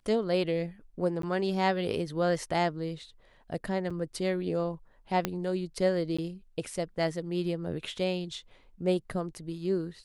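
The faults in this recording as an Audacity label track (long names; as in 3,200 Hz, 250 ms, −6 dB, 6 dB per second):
1.220000	1.230000	drop-out 13 ms
3.900000	3.910000	drop-out 5.7 ms
5.250000	5.250000	click −13 dBFS
6.170000	6.180000	drop-out 15 ms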